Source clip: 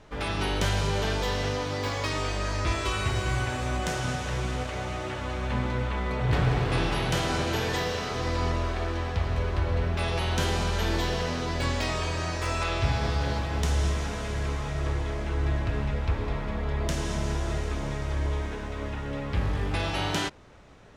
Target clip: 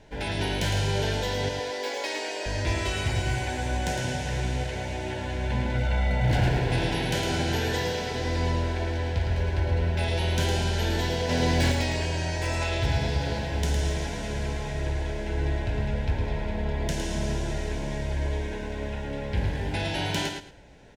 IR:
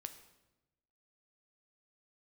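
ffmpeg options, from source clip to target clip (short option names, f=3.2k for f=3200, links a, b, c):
-filter_complex "[0:a]asettb=1/sr,asplit=3[a][b][c];[a]atrim=end=1.494[d];[b]atrim=start=1.49:end=2.46,asetpts=PTS-STARTPTS,afade=t=in:d=0.004:c=qsin,afade=t=out:st=0.966:d=0.004:c=qsin,highpass=f=340:w=0.5412,highpass=f=340:w=1.3066[e];[c]atrim=start=2.456[f];[d][e]acrossfade=d=0.004:c1=hsin:c2=qsin[g];[g][f]acrossfade=d=0.004:c1=qsin:c2=hsin,asettb=1/sr,asplit=3[h][i][j];[h]atrim=end=5.744[k];[i]atrim=start=5.74:end=6.49,asetpts=PTS-STARTPTS,afade=t=in:d=0.004:c=qsin,afade=t=out:st=0.746:d=0.004:c=qsin,aecho=1:1:1.4:0.7,atrim=end_sample=33075[l];[j]atrim=start=6.486[m];[k][l]acrossfade=d=0.004:c1=hsin:c2=qsin[n];[n][m]acrossfade=d=0.004:c1=qsin:c2=hsin,asettb=1/sr,asplit=3[o][p][q];[o]atrim=end=11.294[r];[p]atrim=start=11.29:end=11.72,asetpts=PTS-STARTPTS,afade=t=in:d=0.004:c=qsin,afade=t=out:st=0.426:d=0.004:c=qsin,acontrast=33[s];[q]atrim=start=11.716[t];[r][s]acrossfade=d=0.004:c1=hsin:c2=qsin[u];[u][t]acrossfade=d=0.004:c1=qsin:c2=hsin,aeval=exprs='0.133*(abs(mod(val(0)/0.133+3,4)-2)-1)':c=same,asuperstop=centerf=1200:order=4:qfactor=2.9,aecho=1:1:109|218|327:0.501|0.105|0.0221"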